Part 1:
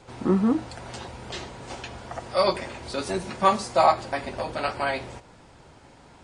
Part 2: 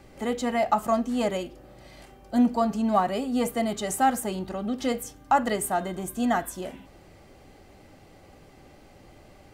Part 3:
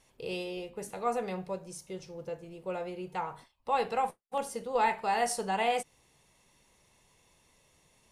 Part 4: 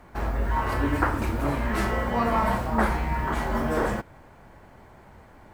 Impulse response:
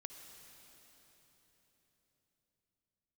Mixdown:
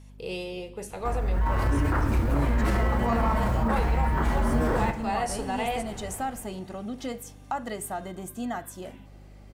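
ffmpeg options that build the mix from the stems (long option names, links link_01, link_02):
-filter_complex "[1:a]adelay=2200,volume=-4.5dB[link_01];[2:a]volume=1dB,asplit=2[link_02][link_03];[link_03]volume=-7dB[link_04];[3:a]lowshelf=frequency=190:gain=9,alimiter=limit=-15dB:level=0:latency=1:release=11,dynaudnorm=framelen=350:gausssize=3:maxgain=8dB,adelay=900,volume=-5.5dB,asplit=2[link_05][link_06];[link_06]volume=-7dB[link_07];[link_01][link_02][link_05]amix=inputs=3:normalize=0,acompressor=threshold=-31dB:ratio=2,volume=0dB[link_08];[4:a]atrim=start_sample=2205[link_09];[link_04][link_07]amix=inputs=2:normalize=0[link_10];[link_10][link_09]afir=irnorm=-1:irlink=0[link_11];[link_08][link_11]amix=inputs=2:normalize=0,aeval=exprs='val(0)+0.00447*(sin(2*PI*50*n/s)+sin(2*PI*2*50*n/s)/2+sin(2*PI*3*50*n/s)/3+sin(2*PI*4*50*n/s)/4+sin(2*PI*5*50*n/s)/5)':channel_layout=same"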